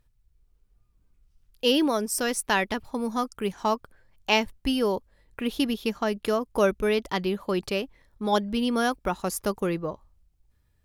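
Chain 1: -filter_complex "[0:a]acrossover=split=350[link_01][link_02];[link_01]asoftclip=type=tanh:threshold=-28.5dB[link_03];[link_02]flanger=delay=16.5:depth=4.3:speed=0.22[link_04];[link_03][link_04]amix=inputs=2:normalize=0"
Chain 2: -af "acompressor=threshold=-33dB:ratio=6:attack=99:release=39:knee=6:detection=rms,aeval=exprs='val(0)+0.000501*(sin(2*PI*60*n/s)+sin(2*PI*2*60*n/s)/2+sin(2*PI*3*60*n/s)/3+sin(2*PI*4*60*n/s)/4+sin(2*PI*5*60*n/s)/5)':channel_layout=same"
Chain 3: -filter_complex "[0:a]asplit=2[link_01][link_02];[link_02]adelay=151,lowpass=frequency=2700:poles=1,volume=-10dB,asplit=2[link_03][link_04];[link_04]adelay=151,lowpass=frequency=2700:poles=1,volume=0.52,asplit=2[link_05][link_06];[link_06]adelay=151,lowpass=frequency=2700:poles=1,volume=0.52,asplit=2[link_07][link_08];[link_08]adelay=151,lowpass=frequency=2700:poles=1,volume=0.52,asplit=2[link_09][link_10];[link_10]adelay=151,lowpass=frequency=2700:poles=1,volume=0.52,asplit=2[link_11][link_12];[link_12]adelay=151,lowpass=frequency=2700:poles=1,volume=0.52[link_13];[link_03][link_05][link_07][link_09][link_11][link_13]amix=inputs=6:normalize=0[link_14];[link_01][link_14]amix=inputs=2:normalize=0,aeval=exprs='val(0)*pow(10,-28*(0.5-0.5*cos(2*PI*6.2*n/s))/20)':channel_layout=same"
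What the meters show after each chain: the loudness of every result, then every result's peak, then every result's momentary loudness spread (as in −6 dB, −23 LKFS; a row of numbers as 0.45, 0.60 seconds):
−30.0, −32.5, −32.5 LKFS; −10.5, −15.5, −10.0 dBFS; 8, 6, 12 LU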